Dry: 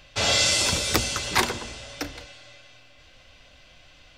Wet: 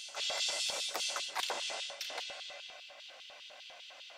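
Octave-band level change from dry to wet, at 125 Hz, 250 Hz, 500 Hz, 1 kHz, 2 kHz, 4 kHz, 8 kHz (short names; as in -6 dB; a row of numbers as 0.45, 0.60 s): under -35 dB, -27.5 dB, -13.5 dB, -11.5 dB, -13.0 dB, -10.0 dB, -13.5 dB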